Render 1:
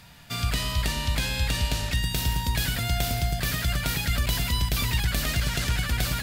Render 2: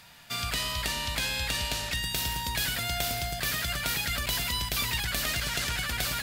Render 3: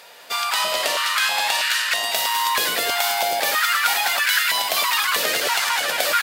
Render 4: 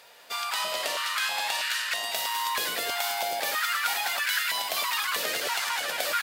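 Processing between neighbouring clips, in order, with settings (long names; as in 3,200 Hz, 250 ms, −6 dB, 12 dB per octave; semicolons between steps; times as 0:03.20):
low-shelf EQ 300 Hz −11.5 dB
echo with shifted repeats 203 ms, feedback 39%, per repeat +110 Hz, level −5.5 dB; high-pass on a step sequencer 3.1 Hz 480–1,500 Hz; level +7 dB
surface crackle 110 per second −39 dBFS; level −8 dB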